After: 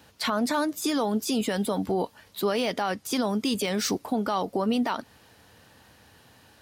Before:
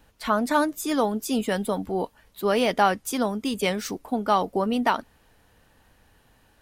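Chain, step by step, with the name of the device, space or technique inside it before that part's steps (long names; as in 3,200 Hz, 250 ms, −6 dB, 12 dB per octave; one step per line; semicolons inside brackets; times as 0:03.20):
broadcast voice chain (high-pass filter 75 Hz 24 dB per octave; de-essing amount 60%; downward compressor 4 to 1, threshold −25 dBFS, peak gain reduction 9.5 dB; parametric band 4,700 Hz +5.5 dB 1 octave; brickwall limiter −22 dBFS, peak gain reduction 8.5 dB)
level +5 dB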